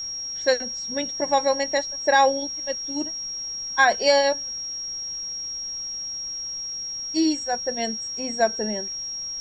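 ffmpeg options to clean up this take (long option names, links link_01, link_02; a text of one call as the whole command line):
ffmpeg -i in.wav -af "bandreject=frequency=5600:width=30,agate=range=-21dB:threshold=-24dB" out.wav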